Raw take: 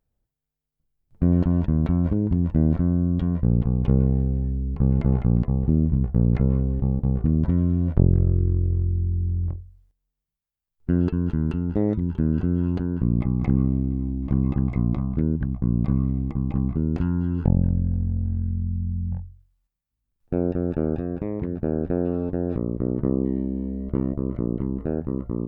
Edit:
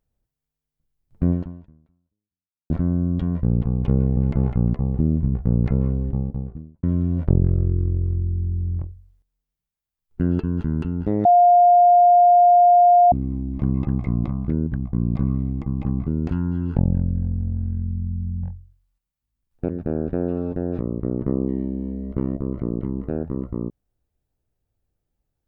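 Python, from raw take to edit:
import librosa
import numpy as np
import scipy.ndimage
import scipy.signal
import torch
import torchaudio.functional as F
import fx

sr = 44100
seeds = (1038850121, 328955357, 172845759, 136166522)

y = fx.studio_fade_out(x, sr, start_s=6.65, length_s=0.87)
y = fx.edit(y, sr, fx.fade_out_span(start_s=1.3, length_s=1.4, curve='exp'),
    fx.cut(start_s=4.17, length_s=0.69),
    fx.bleep(start_s=11.94, length_s=1.87, hz=706.0, db=-9.5),
    fx.cut(start_s=20.38, length_s=1.08), tone=tone)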